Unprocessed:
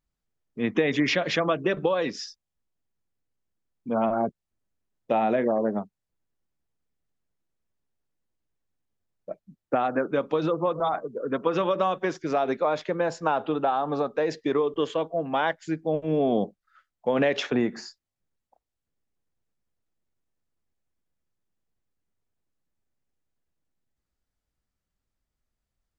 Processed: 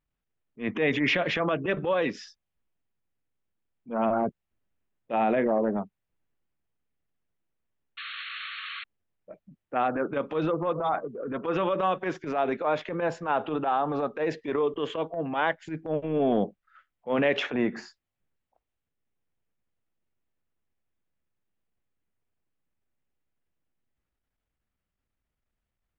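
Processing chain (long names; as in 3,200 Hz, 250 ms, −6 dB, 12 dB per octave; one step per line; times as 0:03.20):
transient designer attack −12 dB, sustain +2 dB
sound drawn into the spectrogram noise, 0:07.97–0:08.84, 1,100–4,400 Hz −38 dBFS
high shelf with overshoot 3,700 Hz −8 dB, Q 1.5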